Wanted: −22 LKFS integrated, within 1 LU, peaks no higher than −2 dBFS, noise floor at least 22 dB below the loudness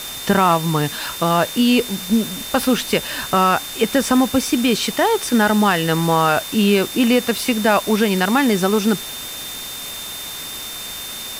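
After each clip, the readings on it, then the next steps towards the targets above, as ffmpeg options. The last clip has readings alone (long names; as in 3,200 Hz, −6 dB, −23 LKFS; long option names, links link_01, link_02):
interfering tone 3,600 Hz; level of the tone −32 dBFS; background noise floor −30 dBFS; target noise floor −40 dBFS; integrated loudness −18.0 LKFS; sample peak −4.0 dBFS; target loudness −22.0 LKFS
→ -af "bandreject=frequency=3600:width=30"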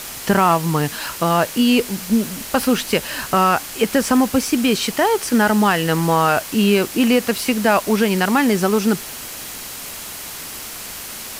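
interfering tone none found; background noise floor −32 dBFS; target noise floor −40 dBFS
→ -af "afftdn=noise_reduction=8:noise_floor=-32"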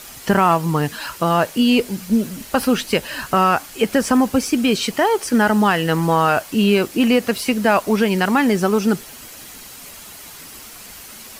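background noise floor −39 dBFS; target noise floor −40 dBFS
→ -af "afftdn=noise_reduction=6:noise_floor=-39"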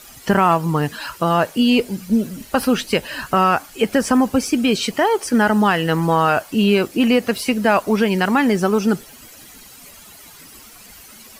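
background noise floor −43 dBFS; integrated loudness −18.0 LKFS; sample peak −4.5 dBFS; target loudness −22.0 LKFS
→ -af "volume=-4dB"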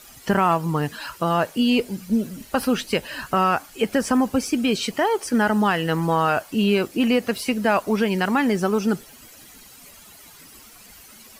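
integrated loudness −22.0 LKFS; sample peak −8.5 dBFS; background noise floor −47 dBFS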